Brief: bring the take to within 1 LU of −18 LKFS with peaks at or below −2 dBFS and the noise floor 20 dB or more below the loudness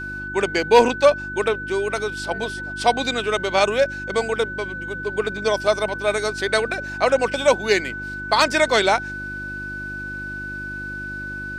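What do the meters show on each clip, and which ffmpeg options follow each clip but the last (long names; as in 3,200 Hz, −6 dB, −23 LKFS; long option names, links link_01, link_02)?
mains hum 50 Hz; hum harmonics up to 350 Hz; level of the hum −35 dBFS; interfering tone 1,500 Hz; level of the tone −29 dBFS; integrated loudness −21.5 LKFS; sample peak −3.0 dBFS; target loudness −18.0 LKFS
→ -af "bandreject=frequency=50:width_type=h:width=4,bandreject=frequency=100:width_type=h:width=4,bandreject=frequency=150:width_type=h:width=4,bandreject=frequency=200:width_type=h:width=4,bandreject=frequency=250:width_type=h:width=4,bandreject=frequency=300:width_type=h:width=4,bandreject=frequency=350:width_type=h:width=4"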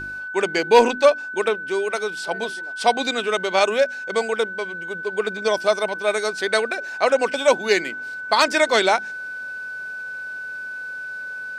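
mains hum none found; interfering tone 1,500 Hz; level of the tone −29 dBFS
→ -af "bandreject=frequency=1500:width=30"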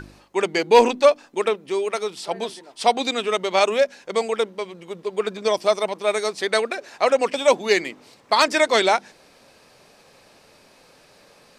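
interfering tone none found; integrated loudness −21.0 LKFS; sample peak −3.0 dBFS; target loudness −18.0 LKFS
→ -af "volume=3dB,alimiter=limit=-2dB:level=0:latency=1"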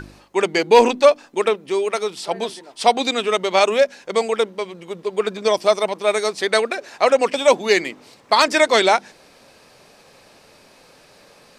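integrated loudness −18.5 LKFS; sample peak −2.0 dBFS; background noise floor −51 dBFS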